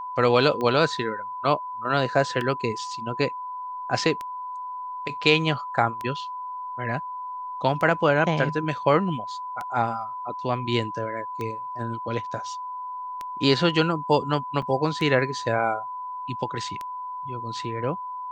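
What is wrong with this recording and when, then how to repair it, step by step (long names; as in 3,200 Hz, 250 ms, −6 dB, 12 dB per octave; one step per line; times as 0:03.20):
scratch tick 33 1/3 rpm −18 dBFS
whistle 1,000 Hz −31 dBFS
0:14.62: drop-out 4.5 ms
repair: click removal
notch filter 1,000 Hz, Q 30
repair the gap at 0:14.62, 4.5 ms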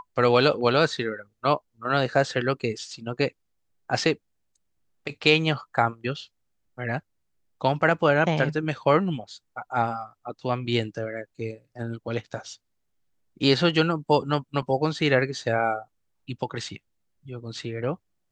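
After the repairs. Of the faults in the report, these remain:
none of them is left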